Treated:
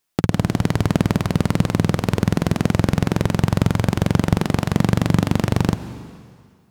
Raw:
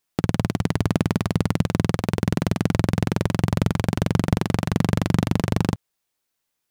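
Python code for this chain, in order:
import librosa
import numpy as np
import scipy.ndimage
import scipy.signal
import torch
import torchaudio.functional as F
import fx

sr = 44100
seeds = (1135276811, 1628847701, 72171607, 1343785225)

y = fx.rev_plate(x, sr, seeds[0], rt60_s=2.0, hf_ratio=0.95, predelay_ms=120, drr_db=13.0)
y = y * librosa.db_to_amplitude(3.0)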